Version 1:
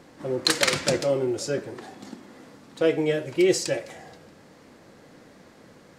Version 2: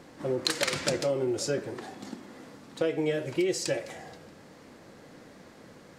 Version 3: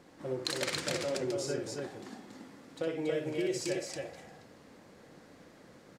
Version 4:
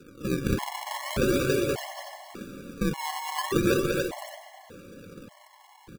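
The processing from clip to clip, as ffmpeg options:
-af "acompressor=threshold=0.0631:ratio=6"
-af "aecho=1:1:61.22|279.9:0.562|0.708,volume=0.422"
-af "acrusher=samples=40:mix=1:aa=0.000001:lfo=1:lforange=64:lforate=0.4,aecho=1:1:195.3|285.7:0.631|0.631,afftfilt=real='re*gt(sin(2*PI*0.85*pts/sr)*(1-2*mod(floor(b*sr/1024/560),2)),0)':imag='im*gt(sin(2*PI*0.85*pts/sr)*(1-2*mod(floor(b*sr/1024/560),2)),0)':win_size=1024:overlap=0.75,volume=2.66"

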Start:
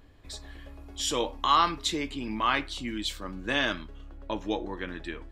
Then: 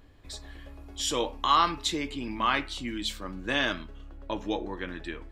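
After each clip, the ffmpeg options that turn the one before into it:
-af "bandreject=f=216.4:t=h:w=4,bandreject=f=432.8:t=h:w=4,bandreject=f=649.2:t=h:w=4,bandreject=f=865.6:t=h:w=4,bandreject=f=1082:t=h:w=4,bandreject=f=1298.4:t=h:w=4,bandreject=f=1514.8:t=h:w=4,bandreject=f=1731.2:t=h:w=4,bandreject=f=1947.6:t=h:w=4,bandreject=f=2164:t=h:w=4,bandreject=f=2380.4:t=h:w=4,bandreject=f=2596.8:t=h:w=4,bandreject=f=2813.2:t=h:w=4"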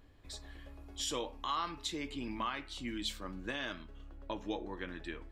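-af "alimiter=limit=0.1:level=0:latency=1:release=320,volume=0.531"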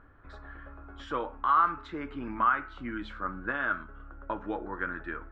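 -af "lowpass=f=1400:t=q:w=8.3,volume=1.41"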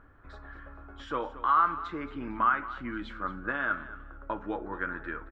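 -af "aecho=1:1:224|448:0.168|0.0386"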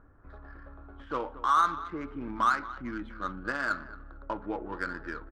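-af "adynamicsmooth=sensitivity=4:basefreq=1400"

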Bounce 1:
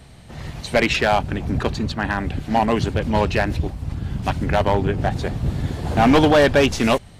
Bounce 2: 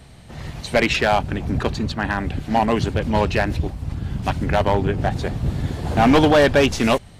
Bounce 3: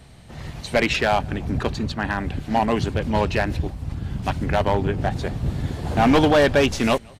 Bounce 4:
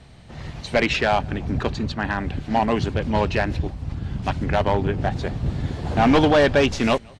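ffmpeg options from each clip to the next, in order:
-af anull
-filter_complex "[0:a]asplit=2[s0][s1];[s1]adelay=174.9,volume=0.0398,highshelf=f=4000:g=-3.94[s2];[s0][s2]amix=inputs=2:normalize=0,volume=0.794"
-af "lowpass=6700"

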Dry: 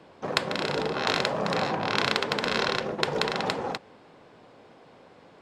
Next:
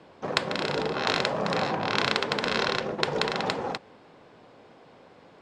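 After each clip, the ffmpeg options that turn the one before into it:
-af "lowpass=9000"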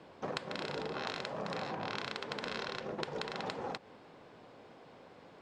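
-af "acompressor=threshold=0.0251:ratio=10,volume=0.708"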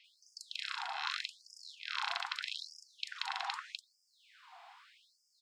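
-filter_complex "[0:a]acrossover=split=1700|5800[s0][s1][s2];[s2]adelay=40[s3];[s0]adelay=90[s4];[s4][s1][s3]amix=inputs=3:normalize=0,afftfilt=real='re*gte(b*sr/1024,650*pow(4800/650,0.5+0.5*sin(2*PI*0.81*pts/sr)))':imag='im*gte(b*sr/1024,650*pow(4800/650,0.5+0.5*sin(2*PI*0.81*pts/sr)))':win_size=1024:overlap=0.75,volume=2"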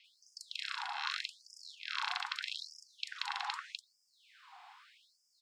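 -af "afreqshift=34"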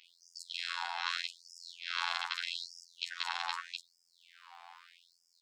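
-af "afftfilt=real='hypot(re,im)*cos(PI*b)':imag='0':win_size=2048:overlap=0.75,volume=1.88"

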